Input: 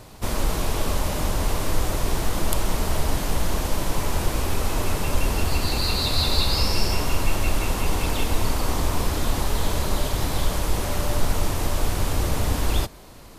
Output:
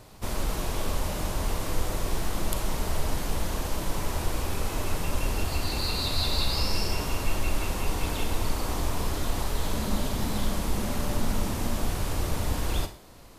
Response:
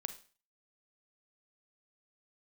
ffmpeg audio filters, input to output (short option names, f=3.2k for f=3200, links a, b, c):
-filter_complex "[0:a]asettb=1/sr,asplit=3[a][b][c];[a]atrim=end=9.734[d];[b]atrim=start=9.73:end=11.86,asetpts=PTS-STARTPTS,afade=t=in:d=0.004:c=qsin,afade=t=out:st=2.126:d=0.004:c=qsin,equalizer=f=220:w=3.4:g=11.5[e];[c]atrim=start=11.856[f];[d][e]acrossfade=d=0.004:c1=hsin:c2=qsin[g];[g][f]acrossfade=d=0.004:c1=qsin:c2=hsin[h];[1:a]atrim=start_sample=2205[i];[h][i]afir=irnorm=-1:irlink=0,volume=-4dB"